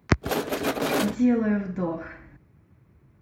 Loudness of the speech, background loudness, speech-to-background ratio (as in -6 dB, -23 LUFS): -26.0 LUFS, -27.5 LUFS, 1.5 dB